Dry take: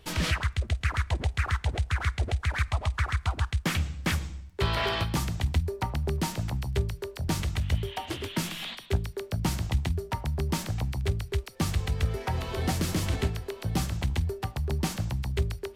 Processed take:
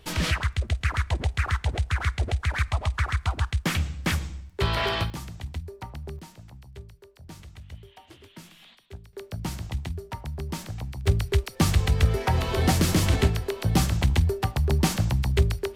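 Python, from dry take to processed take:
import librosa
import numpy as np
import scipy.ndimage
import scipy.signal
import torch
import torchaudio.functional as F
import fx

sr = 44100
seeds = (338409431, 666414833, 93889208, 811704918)

y = fx.gain(x, sr, db=fx.steps((0.0, 2.0), (5.1, -8.0), (6.19, -15.5), (9.13, -4.0), (11.07, 6.5)))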